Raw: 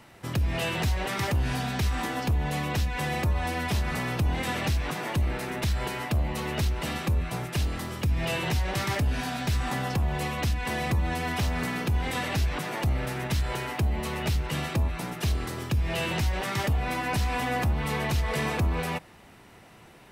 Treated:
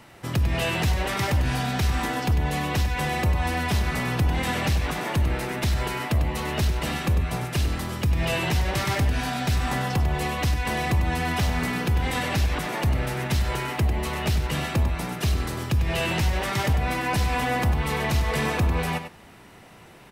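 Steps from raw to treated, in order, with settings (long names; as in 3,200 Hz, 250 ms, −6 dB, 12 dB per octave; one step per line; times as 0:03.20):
single-tap delay 98 ms −9.5 dB
level +3 dB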